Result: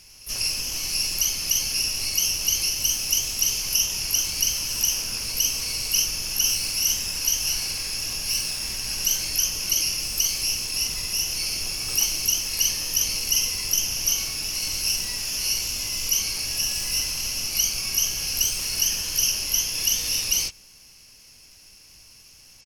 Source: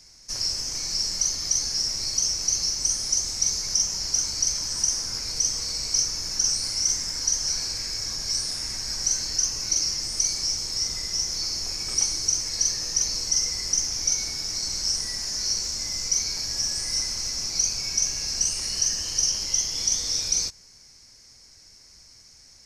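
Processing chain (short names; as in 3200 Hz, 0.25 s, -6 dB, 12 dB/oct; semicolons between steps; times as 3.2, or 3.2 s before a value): harmoniser -12 st -9 dB, +12 st -6 dB; reverse echo 0.195 s -23.5 dB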